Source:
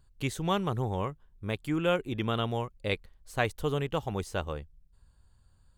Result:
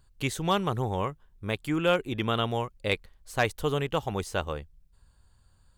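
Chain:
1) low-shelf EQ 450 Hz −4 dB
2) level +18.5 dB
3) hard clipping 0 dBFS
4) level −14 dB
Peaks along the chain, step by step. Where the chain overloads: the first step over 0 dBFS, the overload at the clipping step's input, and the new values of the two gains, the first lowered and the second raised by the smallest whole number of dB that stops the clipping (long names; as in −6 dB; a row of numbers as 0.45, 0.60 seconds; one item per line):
−12.5, +6.0, 0.0, −14.0 dBFS
step 2, 6.0 dB
step 2 +12.5 dB, step 4 −8 dB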